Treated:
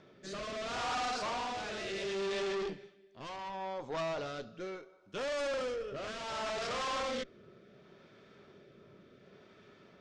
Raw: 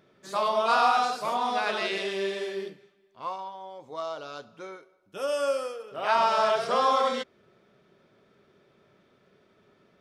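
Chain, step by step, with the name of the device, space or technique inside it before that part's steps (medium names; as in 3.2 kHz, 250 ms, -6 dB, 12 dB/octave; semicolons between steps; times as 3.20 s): overdriven rotary cabinet (valve stage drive 41 dB, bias 0.5; rotary cabinet horn 0.7 Hz); low-pass 7 kHz 24 dB/octave; trim +8 dB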